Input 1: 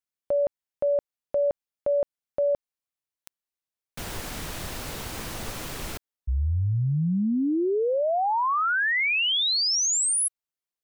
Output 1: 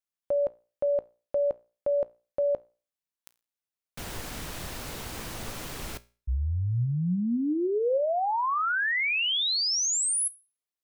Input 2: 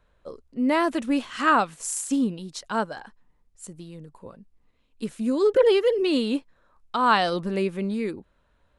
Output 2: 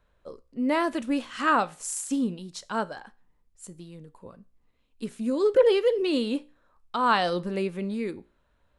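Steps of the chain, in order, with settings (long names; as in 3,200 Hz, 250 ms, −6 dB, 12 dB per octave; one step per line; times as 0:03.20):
dynamic equaliser 520 Hz, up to +3 dB, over −37 dBFS, Q 6.1
tuned comb filter 59 Hz, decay 0.35 s, harmonics all, mix 40%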